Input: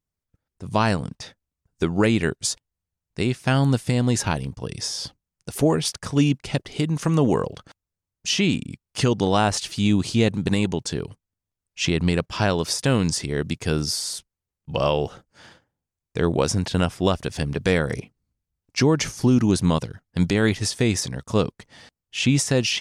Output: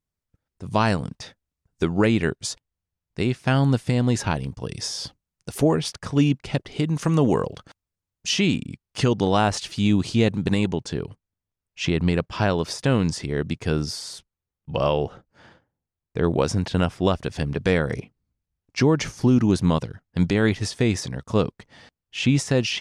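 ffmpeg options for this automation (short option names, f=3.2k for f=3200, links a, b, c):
-af "asetnsamples=n=441:p=0,asendcmd='1.93 lowpass f 4100;4.43 lowpass f 9100;5.63 lowpass f 3800;6.86 lowpass f 9700;8.52 lowpass f 4900;10.67 lowpass f 2900;15.04 lowpass f 1600;16.24 lowpass f 3600',lowpass=f=8.6k:p=1"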